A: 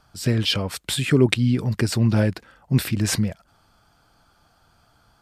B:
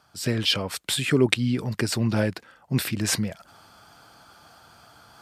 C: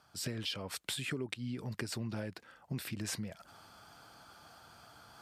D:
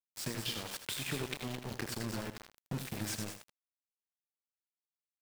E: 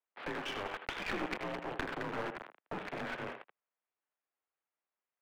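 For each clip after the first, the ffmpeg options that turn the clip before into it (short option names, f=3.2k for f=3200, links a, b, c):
-af "areverse,acompressor=mode=upward:threshold=-39dB:ratio=2.5,areverse,highpass=75,lowshelf=f=250:g=-7"
-af "acompressor=threshold=-31dB:ratio=6,volume=-5dB"
-filter_complex "[0:a]asplit=2[a][b];[b]aecho=0:1:29.15|96.21|215.7:0.316|0.355|0.398[c];[a][c]amix=inputs=2:normalize=0,aeval=exprs='val(0)*gte(abs(val(0)),0.015)':c=same,asplit=2[d][e];[e]aecho=0:1:80:0.316[f];[d][f]amix=inputs=2:normalize=0"
-filter_complex "[0:a]acrossover=split=400 2300:gain=0.1 1 0.0891[a][b][c];[a][b][c]amix=inputs=3:normalize=0,highpass=f=220:t=q:w=0.5412,highpass=f=220:t=q:w=1.307,lowpass=f=3.5k:t=q:w=0.5176,lowpass=f=3.5k:t=q:w=0.7071,lowpass=f=3.5k:t=q:w=1.932,afreqshift=-75,aeval=exprs='clip(val(0),-1,0.00316)':c=same,volume=10.5dB"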